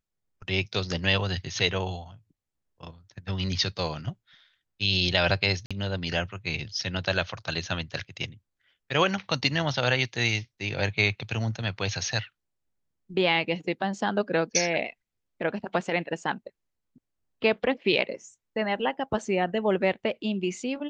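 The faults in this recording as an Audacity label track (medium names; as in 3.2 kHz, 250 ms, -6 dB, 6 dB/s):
5.660000	5.710000	dropout 46 ms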